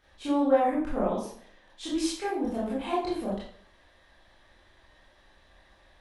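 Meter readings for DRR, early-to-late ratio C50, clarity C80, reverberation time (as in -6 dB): -9.0 dB, 2.0 dB, 6.5 dB, 0.55 s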